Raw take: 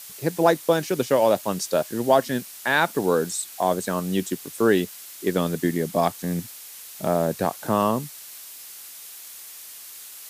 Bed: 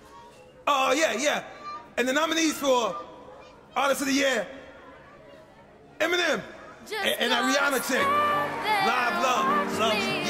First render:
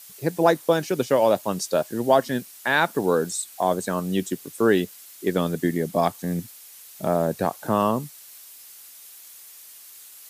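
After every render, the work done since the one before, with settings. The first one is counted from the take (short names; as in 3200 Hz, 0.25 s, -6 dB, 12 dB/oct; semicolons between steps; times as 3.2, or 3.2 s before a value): denoiser 6 dB, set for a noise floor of -42 dBFS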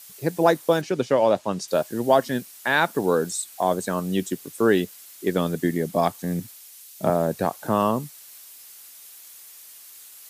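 0.81–1.68 air absorption 64 m; 6.4–7.1 three-band expander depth 40%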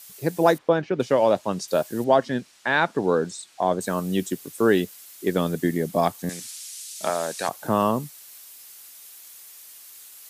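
0.58–1 LPF 2500 Hz; 2.04–3.81 air absorption 93 m; 6.29–7.49 weighting filter ITU-R 468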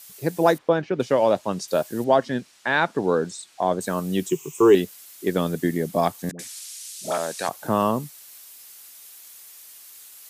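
4.29–4.75 ripple EQ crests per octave 0.72, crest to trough 17 dB; 6.31–7.18 dispersion highs, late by 81 ms, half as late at 660 Hz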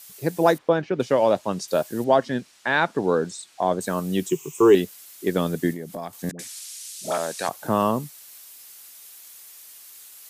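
5.72–6.13 compressor 3:1, threshold -32 dBFS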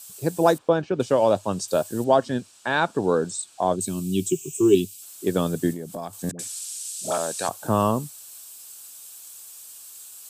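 3.76–5.02 spectral gain 430–2200 Hz -18 dB; thirty-one-band EQ 100 Hz +9 dB, 2000 Hz -11 dB, 8000 Hz +9 dB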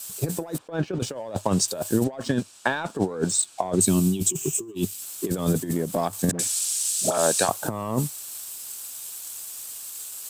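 sample leveller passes 1; negative-ratio compressor -23 dBFS, ratio -0.5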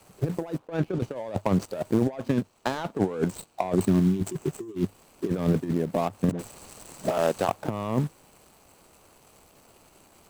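median filter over 25 samples; overloaded stage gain 13 dB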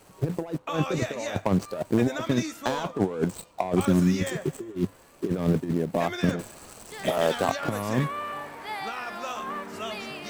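add bed -10 dB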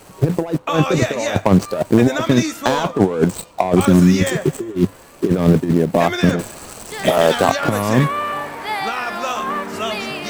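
gain +11 dB; limiter -3 dBFS, peak gain reduction 3 dB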